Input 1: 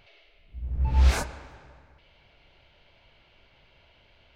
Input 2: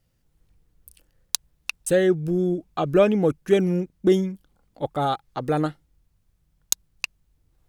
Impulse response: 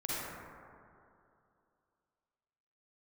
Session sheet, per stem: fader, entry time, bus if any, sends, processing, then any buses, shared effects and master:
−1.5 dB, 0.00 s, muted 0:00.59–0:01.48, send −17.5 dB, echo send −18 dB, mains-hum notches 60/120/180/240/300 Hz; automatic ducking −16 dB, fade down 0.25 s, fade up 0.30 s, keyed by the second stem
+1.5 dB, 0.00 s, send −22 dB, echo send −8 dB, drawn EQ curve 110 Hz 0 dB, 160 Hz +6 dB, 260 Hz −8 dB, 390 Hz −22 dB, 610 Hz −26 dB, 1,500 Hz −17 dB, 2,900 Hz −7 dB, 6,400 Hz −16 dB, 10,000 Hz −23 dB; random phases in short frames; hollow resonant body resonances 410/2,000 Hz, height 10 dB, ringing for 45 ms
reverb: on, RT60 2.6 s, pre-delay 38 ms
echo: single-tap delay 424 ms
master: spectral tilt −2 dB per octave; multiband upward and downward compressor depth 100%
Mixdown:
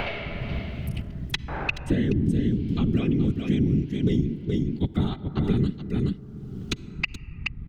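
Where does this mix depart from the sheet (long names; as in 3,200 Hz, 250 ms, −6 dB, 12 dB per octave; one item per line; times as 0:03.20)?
stem 1 −1.5 dB → +6.0 dB
master: missing spectral tilt −2 dB per octave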